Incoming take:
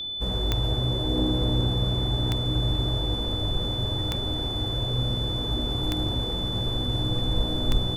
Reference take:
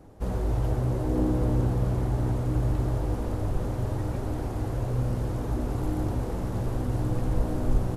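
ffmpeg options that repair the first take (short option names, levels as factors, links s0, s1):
-af "adeclick=t=4,bandreject=f=3500:w=30"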